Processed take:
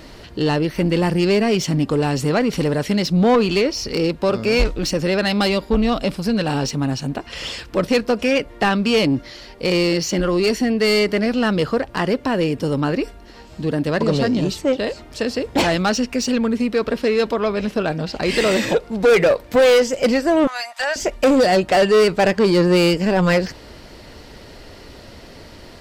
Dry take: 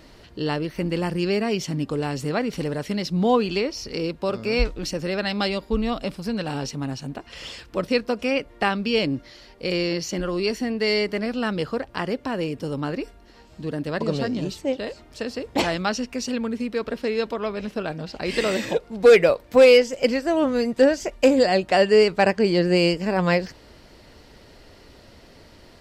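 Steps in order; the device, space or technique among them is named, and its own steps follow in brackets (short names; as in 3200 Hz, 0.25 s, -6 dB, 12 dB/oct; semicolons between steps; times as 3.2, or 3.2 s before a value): 20.47–20.96 elliptic high-pass 690 Hz, stop band 40 dB; saturation between pre-emphasis and de-emphasis (high shelf 3000 Hz +8.5 dB; soft clip -18 dBFS, distortion -8 dB; high shelf 3000 Hz -8.5 dB); gain +8.5 dB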